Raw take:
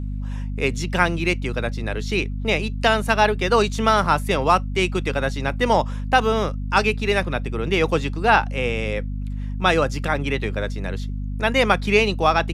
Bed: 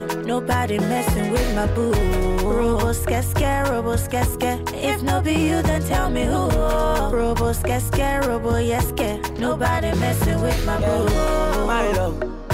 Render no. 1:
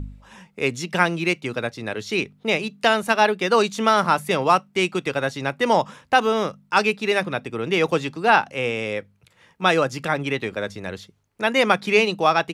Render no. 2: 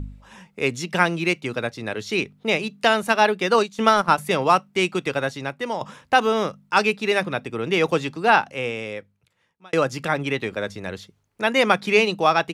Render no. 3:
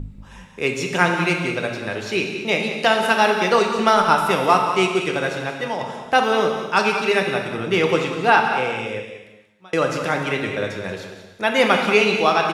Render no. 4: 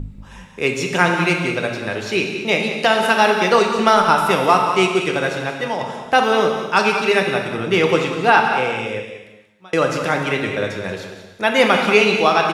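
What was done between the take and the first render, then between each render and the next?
de-hum 50 Hz, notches 5
3.54–4.18 transient shaper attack +3 dB, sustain -11 dB; 5.17–5.81 fade out, to -12 dB; 8.29–9.73 fade out
on a send: echo 0.185 s -10.5 dB; on the sum: non-linear reverb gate 0.48 s falling, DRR 2.5 dB
gain +2.5 dB; limiter -1 dBFS, peak gain reduction 2.5 dB

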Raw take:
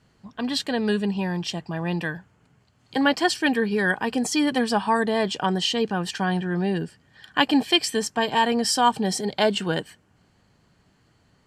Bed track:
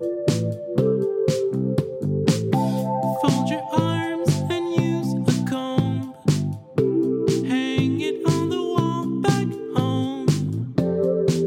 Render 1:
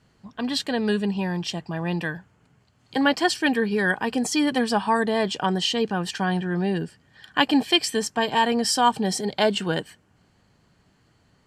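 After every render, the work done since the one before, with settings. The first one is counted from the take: nothing audible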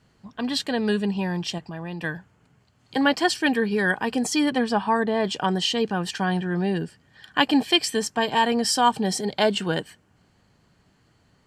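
1.58–2.04 compressor 2.5:1, threshold -33 dBFS; 4.49–5.23 LPF 4000 Hz -> 2000 Hz 6 dB/oct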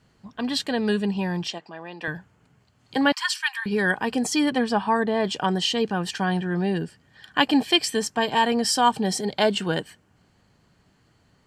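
1.48–2.08 BPF 350–6300 Hz; 3.12–3.66 steep high-pass 900 Hz 96 dB/oct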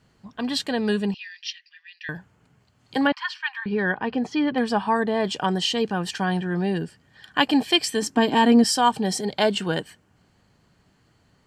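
1.14–2.09 Chebyshev band-pass 1800–5900 Hz, order 4; 3.07–4.58 air absorption 270 m; 8.02–8.64 bell 280 Hz +15 dB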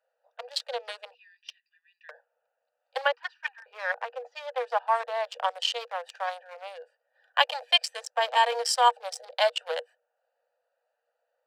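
Wiener smoothing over 41 samples; Chebyshev high-pass 480 Hz, order 10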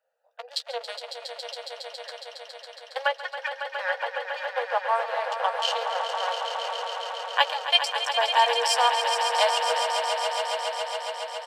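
doubler 13 ms -9 dB; swelling echo 0.138 s, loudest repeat 5, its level -9 dB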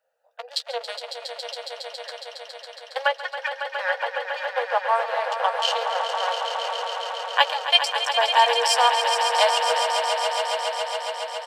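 gain +3 dB

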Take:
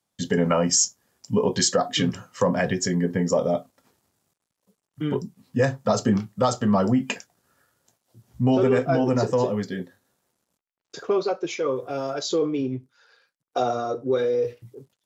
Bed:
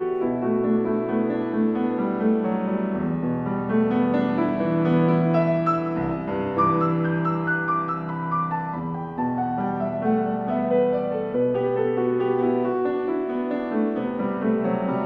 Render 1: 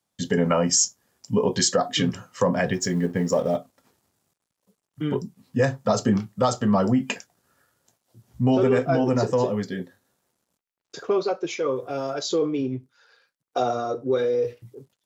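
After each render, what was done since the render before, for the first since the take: 2.73–3.57 G.711 law mismatch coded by A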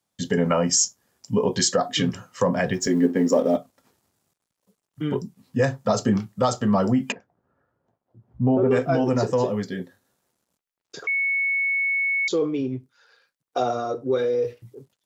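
2.87–3.56 resonant high-pass 280 Hz, resonance Q 3.3; 7.12–8.71 LPF 1000 Hz; 11.07–12.28 bleep 2210 Hz -20 dBFS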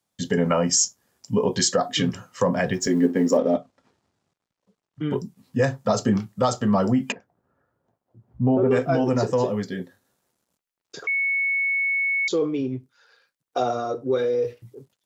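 3.37–5.11 air absorption 100 m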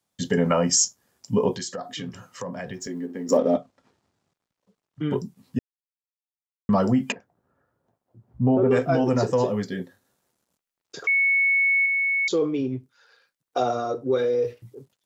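1.56–3.29 compressor 2:1, threshold -39 dBFS; 5.59–6.69 mute; 11.04–11.86 high shelf 2700 Hz +7.5 dB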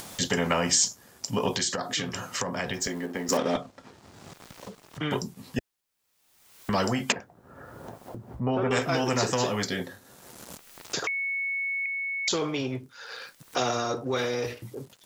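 upward compressor, threshold -38 dBFS; spectral compressor 2:1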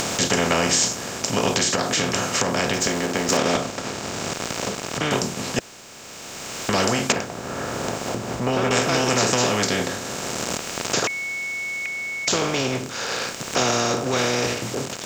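per-bin compression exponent 0.4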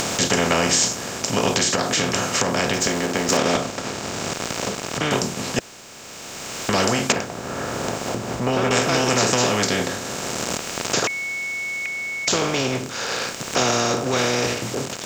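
gain +1 dB; limiter -3 dBFS, peak gain reduction 1 dB

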